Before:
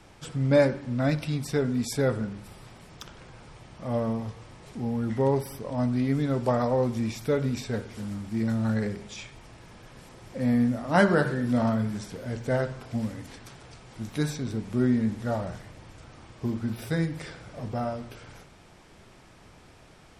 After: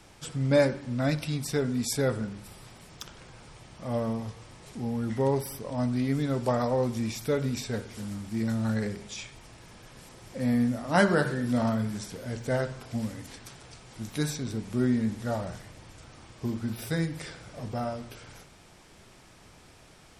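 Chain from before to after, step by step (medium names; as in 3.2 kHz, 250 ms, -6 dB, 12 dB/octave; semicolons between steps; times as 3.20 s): treble shelf 3.9 kHz +7.5 dB; trim -2 dB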